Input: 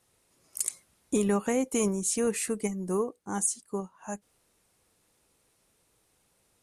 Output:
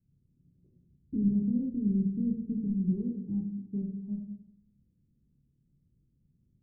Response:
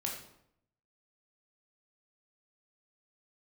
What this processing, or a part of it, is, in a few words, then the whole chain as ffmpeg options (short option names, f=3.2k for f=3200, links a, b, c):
club heard from the street: -filter_complex "[0:a]alimiter=limit=-22.5dB:level=0:latency=1,lowpass=f=220:w=0.5412,lowpass=f=220:w=1.3066[a];[1:a]atrim=start_sample=2205[b];[a][b]afir=irnorm=-1:irlink=0,volume=6.5dB"